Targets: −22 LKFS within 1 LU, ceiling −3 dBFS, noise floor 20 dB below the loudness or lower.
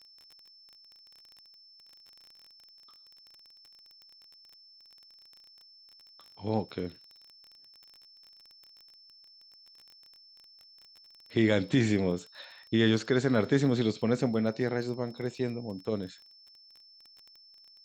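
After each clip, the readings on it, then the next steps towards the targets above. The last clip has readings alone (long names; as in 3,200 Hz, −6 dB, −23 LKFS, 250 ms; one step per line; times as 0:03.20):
crackle rate 21 per second; interfering tone 5,300 Hz; level of the tone −54 dBFS; integrated loudness −29.5 LKFS; sample peak −12.0 dBFS; target loudness −22.0 LKFS
→ click removal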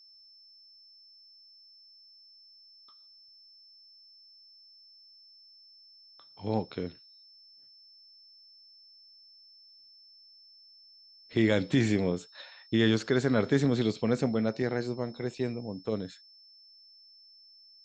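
crackle rate 0 per second; interfering tone 5,300 Hz; level of the tone −54 dBFS
→ notch filter 5,300 Hz, Q 30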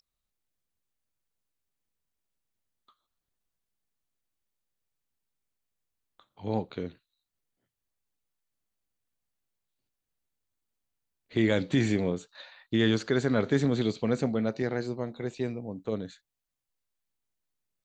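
interfering tone none found; integrated loudness −29.5 LKFS; sample peak −12.5 dBFS; target loudness −22.0 LKFS
→ level +7.5 dB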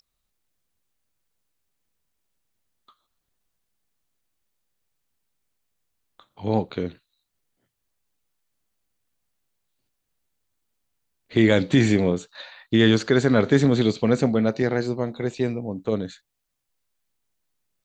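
integrated loudness −22.0 LKFS; sample peak −5.0 dBFS; background noise floor −79 dBFS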